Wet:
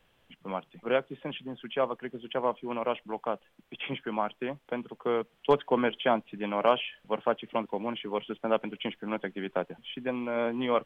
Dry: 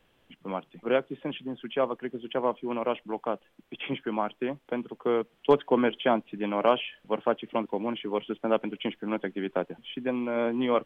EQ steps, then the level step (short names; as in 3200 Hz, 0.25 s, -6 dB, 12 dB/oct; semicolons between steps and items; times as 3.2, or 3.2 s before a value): bell 310 Hz -5.5 dB 1 oct; 0.0 dB